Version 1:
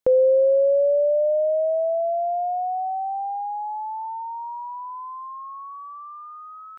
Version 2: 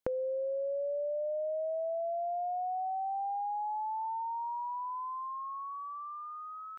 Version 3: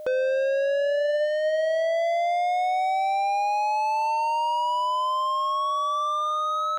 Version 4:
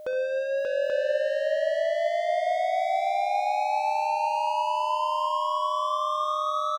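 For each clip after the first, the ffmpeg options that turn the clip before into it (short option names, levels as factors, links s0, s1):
-af "acompressor=threshold=0.0355:ratio=12,volume=0.668"
-filter_complex "[0:a]aemphasis=mode=production:type=75kf,asplit=2[s0][s1];[s1]highpass=f=720:p=1,volume=63.1,asoftclip=type=tanh:threshold=0.141[s2];[s0][s2]amix=inputs=2:normalize=0,lowpass=f=1400:p=1,volume=0.501,aeval=exprs='val(0)+0.0178*sin(2*PI*610*n/s)':c=same"
-af "aecho=1:1:46|66|87|584|833:0.119|0.224|0.106|0.596|0.631,volume=0.596"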